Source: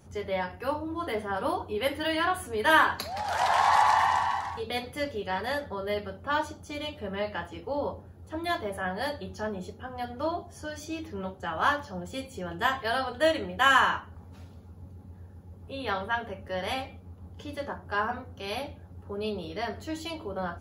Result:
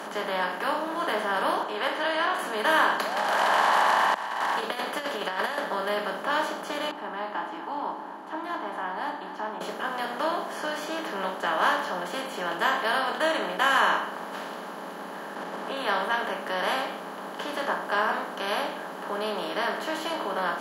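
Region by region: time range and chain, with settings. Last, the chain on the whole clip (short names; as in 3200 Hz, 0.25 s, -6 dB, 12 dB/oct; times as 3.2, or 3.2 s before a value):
1.63–2.39 HPF 450 Hz + air absorption 110 m
4.14–5.58 low shelf 440 Hz -7 dB + negative-ratio compressor -37 dBFS, ratio -0.5
6.91–9.61 double band-pass 520 Hz, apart 1.5 oct + echo 0.248 s -23.5 dB
15.35–15.77 expander -46 dBFS + air absorption 63 m + fast leveller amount 70%
whole clip: per-bin compression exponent 0.4; steep high-pass 180 Hz 48 dB/oct; gain -5 dB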